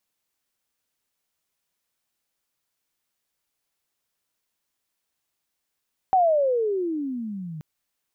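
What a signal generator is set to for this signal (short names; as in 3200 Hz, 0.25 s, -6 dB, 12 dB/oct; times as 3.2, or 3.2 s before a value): gliding synth tone sine, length 1.48 s, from 774 Hz, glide -28.5 st, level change -18 dB, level -14.5 dB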